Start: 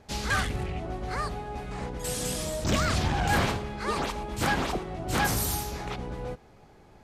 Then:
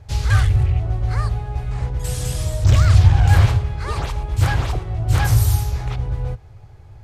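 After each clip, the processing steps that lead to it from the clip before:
low shelf with overshoot 150 Hz +12 dB, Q 3
level +1.5 dB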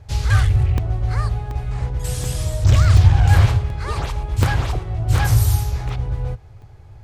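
regular buffer underruns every 0.73 s, samples 64, zero, from 0:00.78

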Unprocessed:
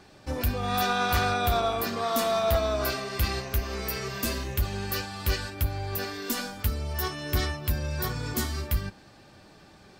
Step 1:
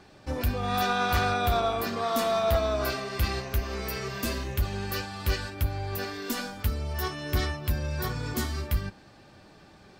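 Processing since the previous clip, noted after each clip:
high-shelf EQ 5,400 Hz −5 dB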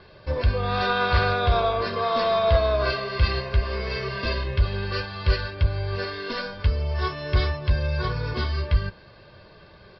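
Butterworth low-pass 5,100 Hz 96 dB per octave
comb filter 1.9 ms, depth 65%
level +3 dB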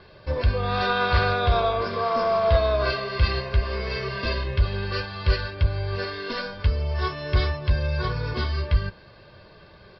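healed spectral selection 0:01.85–0:02.48, 1,700–4,700 Hz before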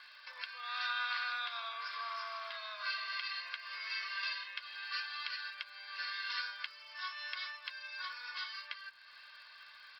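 downward compressor 2 to 1, threshold −37 dBFS, peak gain reduction 12.5 dB
high-pass filter 1,300 Hz 24 dB per octave
surface crackle 100 per second −59 dBFS
level +1 dB

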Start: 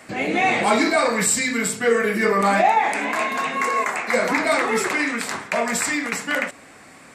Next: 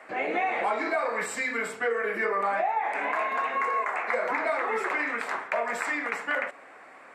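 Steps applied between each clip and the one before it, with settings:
three-way crossover with the lows and the highs turned down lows −22 dB, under 390 Hz, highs −19 dB, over 2,300 Hz
downward compressor 6 to 1, threshold −24 dBFS, peak gain reduction 10.5 dB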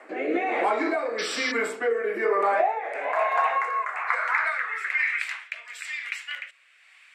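high-pass filter sweep 310 Hz → 3,000 Hz, 0:02.15–0:05.57
rotating-speaker cabinet horn 1.1 Hz
sound drawn into the spectrogram noise, 0:01.18–0:01.52, 1,100–5,900 Hz −35 dBFS
level +2.5 dB

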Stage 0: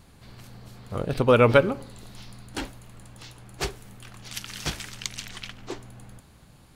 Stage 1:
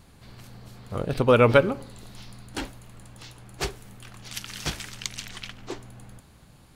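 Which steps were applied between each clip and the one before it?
no processing that can be heard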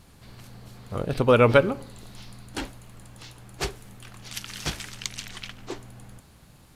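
bit reduction 10 bits
downsampling to 32,000 Hz

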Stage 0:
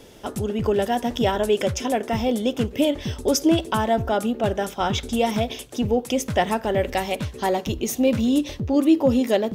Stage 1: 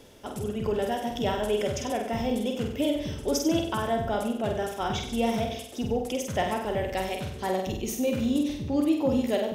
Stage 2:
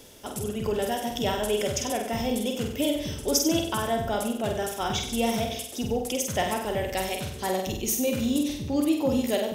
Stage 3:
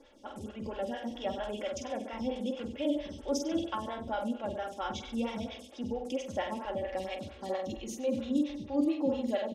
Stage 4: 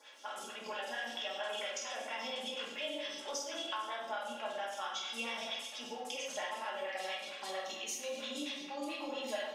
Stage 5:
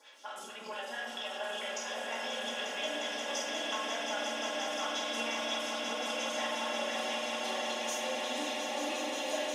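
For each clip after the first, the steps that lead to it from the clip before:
reversed playback; upward compression, threshold −34 dBFS; reversed playback; flutter between parallel walls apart 8.2 metres, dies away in 0.64 s; level −7.5 dB
high-shelf EQ 4,300 Hz +11 dB
low-pass filter 4,200 Hz 12 dB per octave; comb filter 3.6 ms, depth 68%; phaser with staggered stages 4.4 Hz; level −6.5 dB
high-pass filter 1,200 Hz 12 dB per octave; downward compressor, threshold −47 dBFS, peak gain reduction 11.5 dB; rectangular room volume 220 cubic metres, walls mixed, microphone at 1.4 metres; level +6.5 dB
echo that builds up and dies away 178 ms, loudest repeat 8, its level −8 dB

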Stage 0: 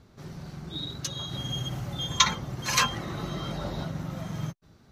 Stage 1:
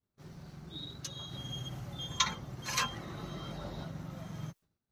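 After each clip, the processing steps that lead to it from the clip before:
bit-depth reduction 12 bits, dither triangular
downward expander −42 dBFS
level −8.5 dB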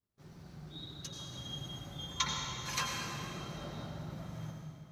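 convolution reverb RT60 2.4 s, pre-delay 78 ms, DRR 1 dB
level −4 dB

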